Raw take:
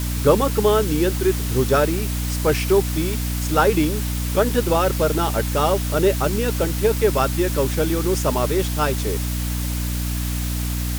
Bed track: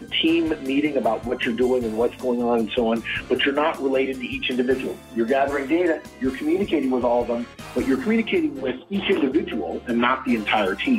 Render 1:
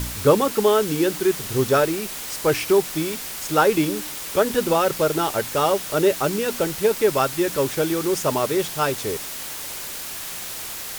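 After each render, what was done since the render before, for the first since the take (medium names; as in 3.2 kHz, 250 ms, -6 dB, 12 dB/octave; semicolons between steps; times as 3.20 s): de-hum 60 Hz, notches 5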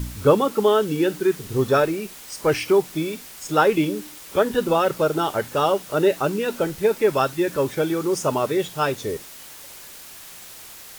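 noise print and reduce 9 dB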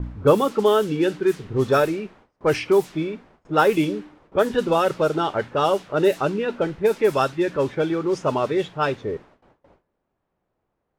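level-controlled noise filter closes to 570 Hz, open at -13.5 dBFS; gate with hold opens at -43 dBFS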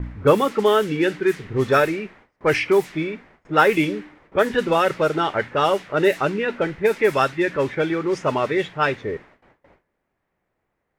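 peaking EQ 2 kHz +10.5 dB 0.73 oct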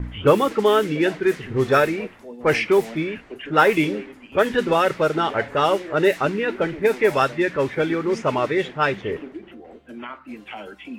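add bed track -15.5 dB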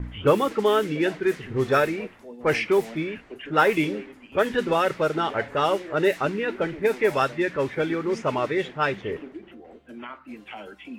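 trim -3.5 dB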